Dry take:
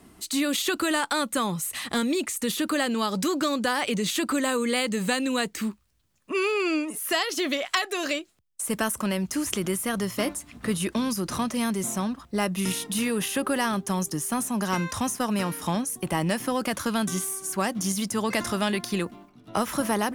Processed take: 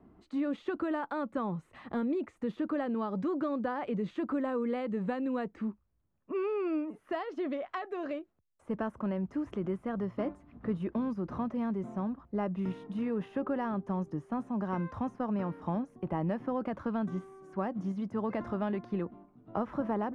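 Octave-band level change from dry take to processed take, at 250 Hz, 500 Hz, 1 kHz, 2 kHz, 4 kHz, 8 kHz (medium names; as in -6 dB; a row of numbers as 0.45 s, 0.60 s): -5.5 dB, -6.0 dB, -8.5 dB, -16.0 dB, under -25 dB, under -40 dB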